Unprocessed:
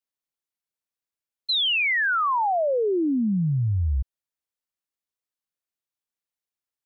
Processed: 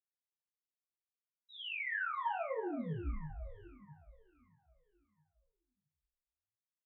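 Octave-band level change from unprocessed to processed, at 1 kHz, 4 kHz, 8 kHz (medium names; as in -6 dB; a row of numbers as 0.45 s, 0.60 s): -15.5 dB, -24.0 dB, no reading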